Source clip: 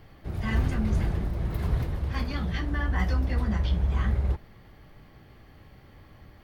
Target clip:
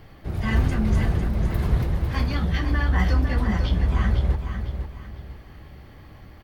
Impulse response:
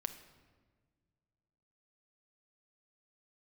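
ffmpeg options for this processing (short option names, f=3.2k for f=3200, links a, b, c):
-af "aecho=1:1:502|1004|1506|2008:0.398|0.135|0.046|0.0156,volume=4.5dB"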